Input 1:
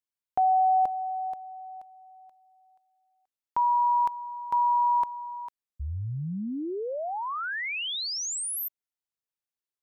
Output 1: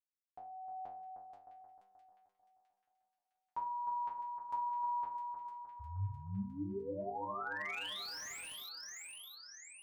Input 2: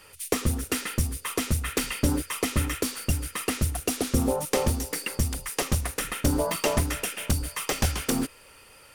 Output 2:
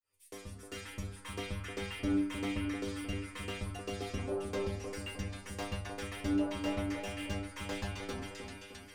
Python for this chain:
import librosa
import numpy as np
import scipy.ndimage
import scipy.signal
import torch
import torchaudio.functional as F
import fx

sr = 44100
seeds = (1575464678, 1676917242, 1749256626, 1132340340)

p1 = fx.fade_in_head(x, sr, length_s=1.15)
p2 = fx.env_lowpass_down(p1, sr, base_hz=2400.0, full_db=-20.0)
p3 = fx.stiff_resonator(p2, sr, f0_hz=97.0, decay_s=0.5, stiffness=0.002)
p4 = p3 + fx.echo_split(p3, sr, split_hz=1600.0, low_ms=308, high_ms=658, feedback_pct=52, wet_db=-6.5, dry=0)
p5 = fx.slew_limit(p4, sr, full_power_hz=25.0)
y = F.gain(torch.from_numpy(p5), 1.5).numpy()